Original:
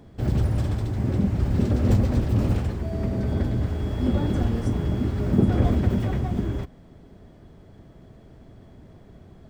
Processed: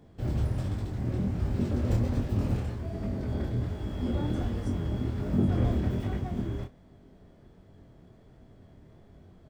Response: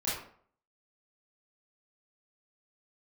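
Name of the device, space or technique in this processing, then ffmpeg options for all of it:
double-tracked vocal: -filter_complex "[0:a]asplit=2[a][b];[b]adelay=33,volume=-12.5dB[c];[a][c]amix=inputs=2:normalize=0,flanger=delay=20:depth=7.4:speed=1.3,volume=-3.5dB"

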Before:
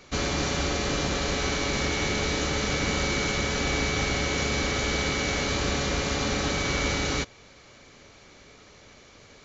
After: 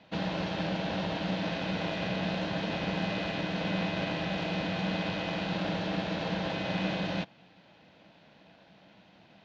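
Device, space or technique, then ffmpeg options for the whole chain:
ring modulator pedal into a guitar cabinet: -af "aeval=exprs='val(0)*sgn(sin(2*PI*240*n/s))':c=same,highpass=99,equalizer=f=190:t=q:w=4:g=8,equalizer=f=380:t=q:w=4:g=-7,equalizer=f=610:t=q:w=4:g=4,equalizer=f=1.2k:t=q:w=4:g=-8,equalizer=f=2.1k:t=q:w=4:g=-6,lowpass=f=3.7k:w=0.5412,lowpass=f=3.7k:w=1.3066,volume=-5dB"

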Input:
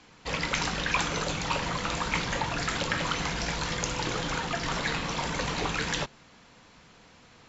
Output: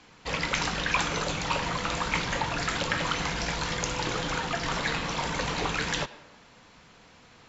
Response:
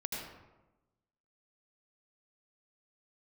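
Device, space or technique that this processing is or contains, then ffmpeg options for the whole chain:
filtered reverb send: -filter_complex "[0:a]asplit=2[a][b];[b]highpass=370,lowpass=5.2k[c];[1:a]atrim=start_sample=2205[d];[c][d]afir=irnorm=-1:irlink=0,volume=-15.5dB[e];[a][e]amix=inputs=2:normalize=0"

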